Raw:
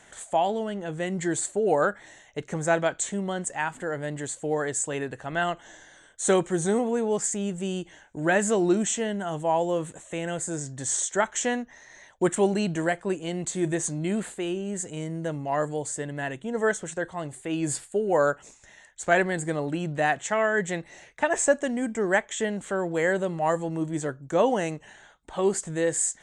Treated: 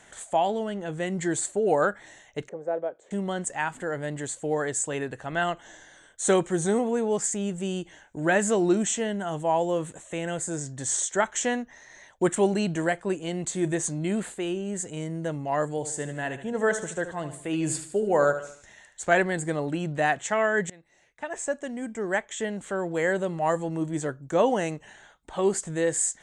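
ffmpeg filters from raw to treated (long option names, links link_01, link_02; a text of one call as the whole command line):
ffmpeg -i in.wav -filter_complex "[0:a]asettb=1/sr,asplit=3[link_01][link_02][link_03];[link_01]atrim=end=2.494[link_04];[link_02]atrim=start=2.49:end=3.11,asetpts=PTS-STARTPTS,afade=type=in:duration=0.004:curve=qsin,afade=type=out:start_time=0.616:duration=0.004:curve=qsin,bandpass=frequency=500:width_type=q:width=3[link_05];[link_03]atrim=start=3.106[link_06];[link_04][link_05]acrossfade=duration=0.004:curve1=hsin:curve2=qsin[link_07];[link_07][link_06]acrossfade=duration=0.004:curve1=qsin:curve2=hsin,asettb=1/sr,asplit=3[link_08][link_09][link_10];[link_08]atrim=end=15.704[link_11];[link_09]atrim=start=15.7:end=19.06,asetpts=PTS-STARTPTS,afade=type=in:duration=0.004:curve=qsin,afade=type=out:start_time=3.356:duration=0.004:curve=qsin,aecho=1:1:75|150|225|300:0.282|0.118|0.0497|0.0209,atrim=end_sample=148176[link_12];[link_10]atrim=start=19.056[link_13];[link_11][link_12]acrossfade=duration=0.004:curve1=hsin:curve2=qsin[link_14];[link_14][link_13]acrossfade=duration=0.004:curve1=qsin:curve2=hsin,asplit=2[link_15][link_16];[link_15]atrim=end=20.7,asetpts=PTS-STARTPTS,afade=type=out:start_time=20.696:duration=0.004:curve=hsin:silence=0.0668344[link_17];[link_16]atrim=start=20.7,asetpts=PTS-STARTPTS,afade=type=in:duration=3.39:curve=qsin:silence=0.0668344[link_18];[link_17][link_18]concat=n=2:v=0:a=1" out.wav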